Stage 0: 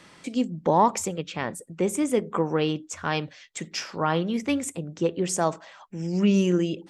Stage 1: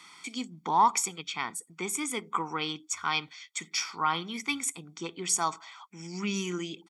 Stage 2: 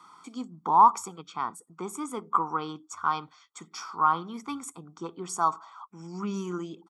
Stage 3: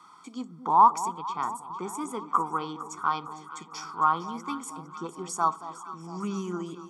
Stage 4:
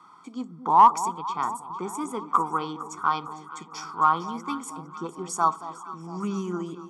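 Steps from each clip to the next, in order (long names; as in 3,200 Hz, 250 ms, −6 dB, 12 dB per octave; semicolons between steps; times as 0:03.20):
high-pass filter 1,400 Hz 6 dB per octave; comb filter 0.9 ms, depth 95%
high shelf with overshoot 1,600 Hz −9.5 dB, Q 3
delay that swaps between a low-pass and a high-pass 228 ms, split 990 Hz, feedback 76%, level −12 dB
in parallel at −8.5 dB: asymmetric clip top −12.5 dBFS; on the sum: one half of a high-frequency compander decoder only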